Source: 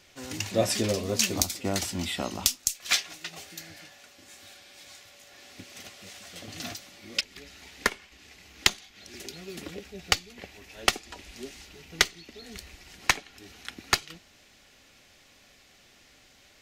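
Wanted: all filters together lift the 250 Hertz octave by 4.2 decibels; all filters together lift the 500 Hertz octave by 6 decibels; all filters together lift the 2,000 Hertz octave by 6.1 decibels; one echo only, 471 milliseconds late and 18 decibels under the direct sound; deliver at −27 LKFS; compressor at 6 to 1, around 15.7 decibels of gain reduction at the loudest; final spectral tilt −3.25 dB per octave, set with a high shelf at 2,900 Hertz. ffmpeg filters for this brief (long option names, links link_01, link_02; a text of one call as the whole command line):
ffmpeg -i in.wav -af "equalizer=frequency=250:width_type=o:gain=3.5,equalizer=frequency=500:width_type=o:gain=6,equalizer=frequency=2000:width_type=o:gain=5.5,highshelf=frequency=2900:gain=3.5,acompressor=threshold=-33dB:ratio=6,aecho=1:1:471:0.126,volume=11.5dB" out.wav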